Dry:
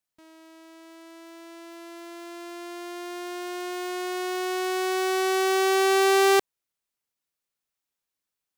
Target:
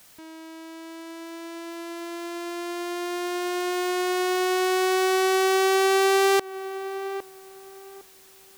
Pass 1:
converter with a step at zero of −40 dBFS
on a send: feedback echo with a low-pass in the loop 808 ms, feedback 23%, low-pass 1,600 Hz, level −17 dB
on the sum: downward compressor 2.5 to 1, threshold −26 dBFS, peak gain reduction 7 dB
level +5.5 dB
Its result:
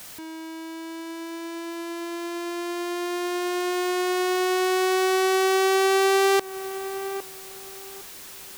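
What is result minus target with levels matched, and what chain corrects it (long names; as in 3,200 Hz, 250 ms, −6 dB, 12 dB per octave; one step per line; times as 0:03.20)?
converter with a step at zero: distortion +11 dB
converter with a step at zero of −51 dBFS
on a send: feedback echo with a low-pass in the loop 808 ms, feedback 23%, low-pass 1,600 Hz, level −17 dB
on the sum: downward compressor 2.5 to 1, threshold −26 dBFS, peak gain reduction 6.5 dB
level +5.5 dB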